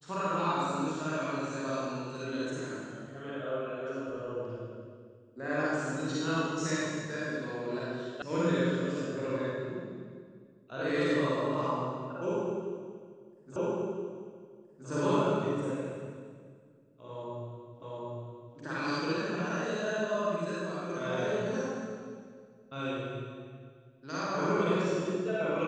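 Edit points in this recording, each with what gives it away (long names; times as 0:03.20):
0:08.22: cut off before it has died away
0:13.56: the same again, the last 1.32 s
0:17.82: the same again, the last 0.75 s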